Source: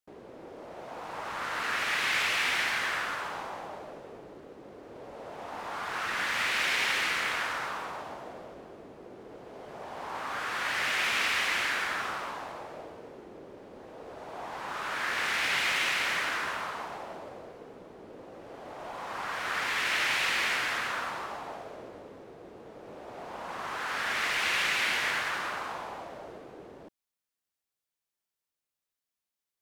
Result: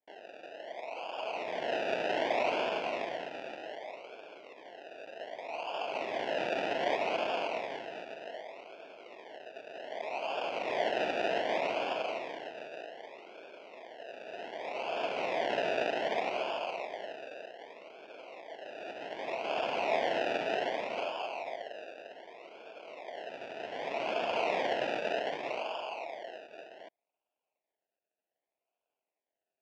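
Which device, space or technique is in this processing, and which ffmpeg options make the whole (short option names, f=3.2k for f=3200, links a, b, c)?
circuit-bent sampling toy: -af "acrusher=samples=32:mix=1:aa=0.000001:lfo=1:lforange=19.2:lforate=0.65,highpass=520,equalizer=f=660:t=q:w=4:g=8,equalizer=f=1.2k:t=q:w=4:g=-10,equalizer=f=2.6k:t=q:w=4:g=6,equalizer=f=4.1k:t=q:w=4:g=-7,lowpass=f=4.4k:w=0.5412,lowpass=f=4.4k:w=1.3066"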